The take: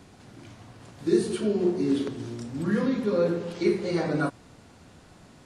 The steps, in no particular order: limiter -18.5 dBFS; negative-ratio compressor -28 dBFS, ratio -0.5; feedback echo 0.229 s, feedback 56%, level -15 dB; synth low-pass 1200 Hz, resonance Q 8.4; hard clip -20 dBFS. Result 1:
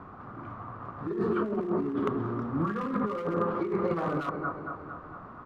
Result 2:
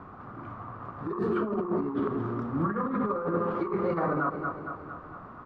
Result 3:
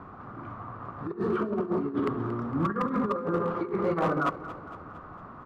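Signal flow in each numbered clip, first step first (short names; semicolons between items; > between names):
feedback echo > limiter > synth low-pass > hard clip > negative-ratio compressor; feedback echo > hard clip > negative-ratio compressor > synth low-pass > limiter; negative-ratio compressor > limiter > synth low-pass > hard clip > feedback echo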